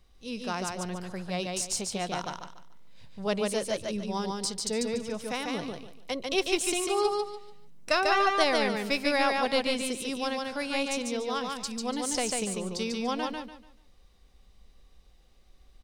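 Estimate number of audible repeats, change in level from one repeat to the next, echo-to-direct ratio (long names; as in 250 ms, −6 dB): 3, −11.0 dB, −2.5 dB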